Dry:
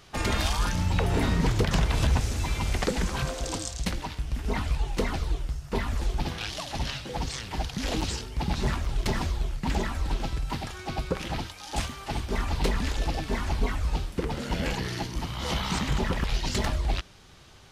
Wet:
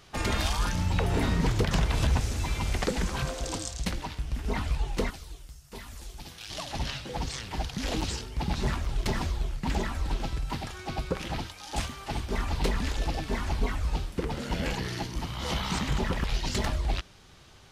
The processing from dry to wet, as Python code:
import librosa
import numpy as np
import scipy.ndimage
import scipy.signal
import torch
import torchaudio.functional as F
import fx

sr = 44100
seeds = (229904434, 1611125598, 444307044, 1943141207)

y = fx.pre_emphasis(x, sr, coefficient=0.8, at=(5.09, 6.49), fade=0.02)
y = F.gain(torch.from_numpy(y), -1.5).numpy()